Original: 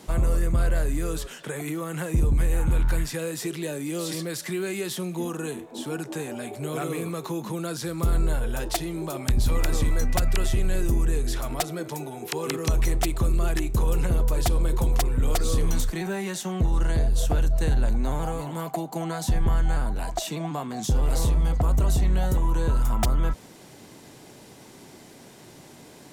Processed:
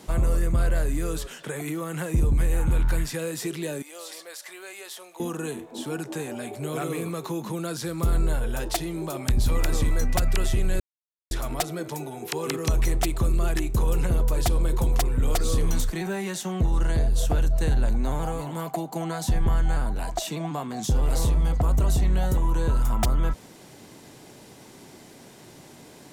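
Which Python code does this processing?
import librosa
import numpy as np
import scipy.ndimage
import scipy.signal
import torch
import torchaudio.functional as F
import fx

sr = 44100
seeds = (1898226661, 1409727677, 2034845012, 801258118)

y = fx.ladder_highpass(x, sr, hz=500.0, resonance_pct=25, at=(3.82, 5.2))
y = fx.edit(y, sr, fx.silence(start_s=10.8, length_s=0.51), tone=tone)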